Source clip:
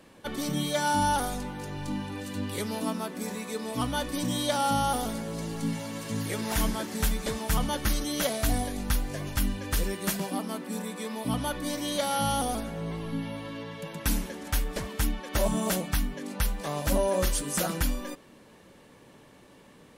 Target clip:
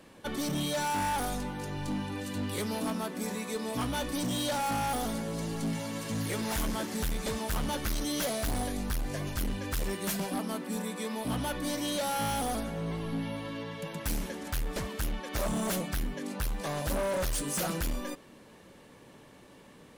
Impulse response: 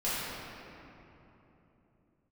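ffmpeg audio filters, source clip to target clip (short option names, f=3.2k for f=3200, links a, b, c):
-af "asoftclip=type=hard:threshold=-28dB"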